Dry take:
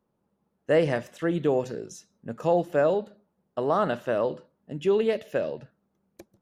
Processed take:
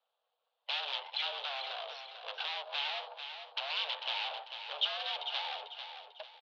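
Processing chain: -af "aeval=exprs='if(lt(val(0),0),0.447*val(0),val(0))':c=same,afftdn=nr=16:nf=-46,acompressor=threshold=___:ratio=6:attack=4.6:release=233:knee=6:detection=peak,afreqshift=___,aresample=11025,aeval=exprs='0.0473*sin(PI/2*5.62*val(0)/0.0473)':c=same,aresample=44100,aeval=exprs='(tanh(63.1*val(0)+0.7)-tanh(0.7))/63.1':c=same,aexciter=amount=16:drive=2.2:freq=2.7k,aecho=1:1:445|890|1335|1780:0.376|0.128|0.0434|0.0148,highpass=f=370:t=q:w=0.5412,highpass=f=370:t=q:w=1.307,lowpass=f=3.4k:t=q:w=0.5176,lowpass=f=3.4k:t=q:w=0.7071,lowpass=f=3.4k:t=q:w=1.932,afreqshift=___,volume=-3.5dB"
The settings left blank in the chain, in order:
-38dB, 84, 200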